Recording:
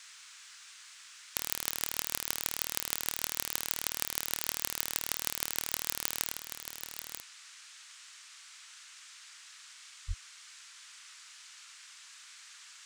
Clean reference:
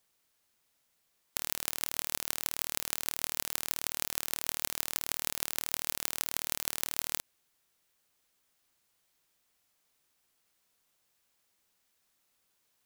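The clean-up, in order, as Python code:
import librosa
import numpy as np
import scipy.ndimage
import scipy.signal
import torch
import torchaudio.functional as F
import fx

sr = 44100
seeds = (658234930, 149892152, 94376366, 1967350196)

y = fx.highpass(x, sr, hz=140.0, slope=24, at=(10.07, 10.19), fade=0.02)
y = fx.noise_reduce(y, sr, print_start_s=8.09, print_end_s=8.59, reduce_db=22.0)
y = fx.fix_level(y, sr, at_s=6.32, step_db=8.5)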